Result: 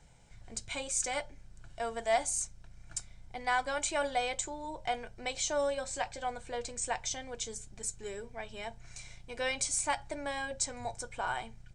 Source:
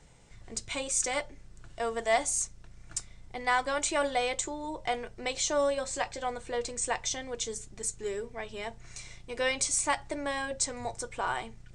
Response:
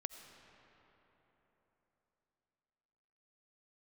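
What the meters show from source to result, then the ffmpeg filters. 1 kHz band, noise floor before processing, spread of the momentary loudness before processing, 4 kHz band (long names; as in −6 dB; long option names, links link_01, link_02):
−2.5 dB, −53 dBFS, 12 LU, −3.5 dB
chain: -af "aecho=1:1:1.3:0.36,volume=-4dB"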